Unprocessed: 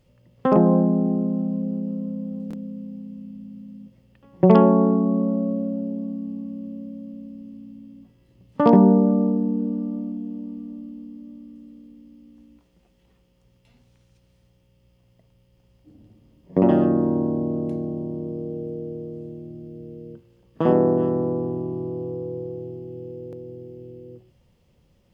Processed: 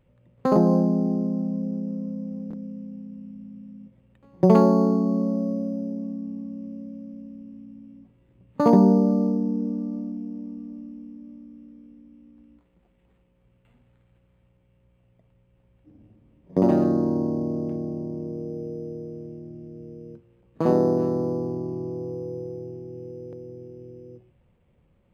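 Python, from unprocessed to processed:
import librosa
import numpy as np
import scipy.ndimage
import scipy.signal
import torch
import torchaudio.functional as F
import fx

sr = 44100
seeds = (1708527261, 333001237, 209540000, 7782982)

y = np.interp(np.arange(len(x)), np.arange(len(x))[::8], x[::8])
y = y * 10.0 ** (-2.0 / 20.0)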